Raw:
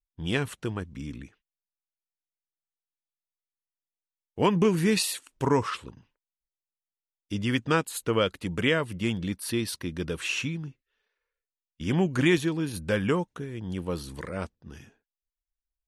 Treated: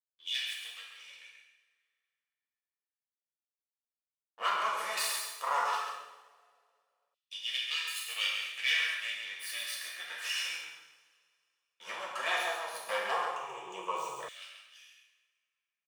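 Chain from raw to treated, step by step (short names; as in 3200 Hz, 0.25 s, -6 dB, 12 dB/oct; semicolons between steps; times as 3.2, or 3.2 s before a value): minimum comb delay 1.7 ms; HPF 100 Hz; gate with hold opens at -46 dBFS; 13.2–14.2 ripple EQ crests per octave 0.71, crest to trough 17 dB; on a send: echo 0.135 s -7 dB; on the sum: two-slope reverb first 0.82 s, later 2.2 s, from -19 dB, DRR -3.5 dB; LFO high-pass saw down 0.14 Hz 680–3300 Hz; gain -8.5 dB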